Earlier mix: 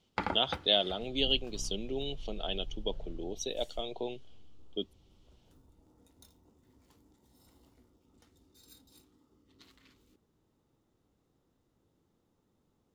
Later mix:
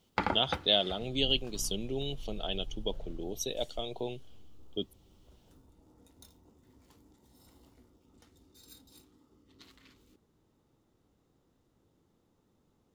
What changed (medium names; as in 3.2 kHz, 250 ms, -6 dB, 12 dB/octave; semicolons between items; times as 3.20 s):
speech: remove band-pass 190–5800 Hz; first sound +3.0 dB